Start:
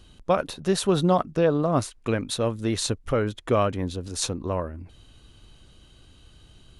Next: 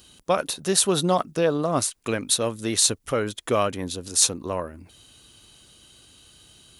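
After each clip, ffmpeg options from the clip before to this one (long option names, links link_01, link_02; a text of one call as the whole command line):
ffmpeg -i in.wav -af "highpass=frequency=180:poles=1,aemphasis=mode=production:type=75kf,asoftclip=type=tanh:threshold=-1.5dB" out.wav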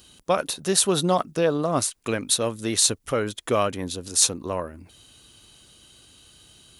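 ffmpeg -i in.wav -af anull out.wav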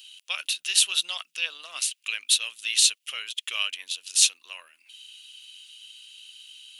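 ffmpeg -i in.wav -af "highpass=frequency=2800:width_type=q:width=5.2,volume=-2dB" out.wav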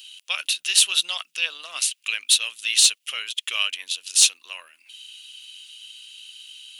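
ffmpeg -i in.wav -af "acontrast=28,volume=-1dB" out.wav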